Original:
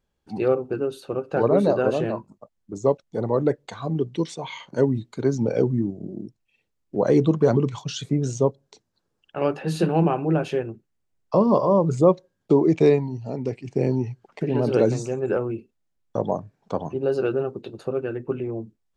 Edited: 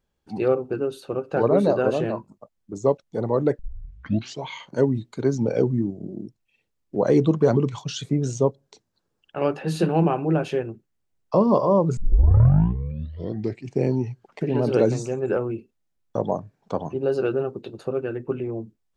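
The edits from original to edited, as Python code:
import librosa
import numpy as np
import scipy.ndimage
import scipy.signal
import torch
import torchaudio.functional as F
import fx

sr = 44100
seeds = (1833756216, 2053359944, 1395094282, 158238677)

y = fx.edit(x, sr, fx.tape_start(start_s=3.59, length_s=0.88),
    fx.tape_start(start_s=11.97, length_s=1.7), tone=tone)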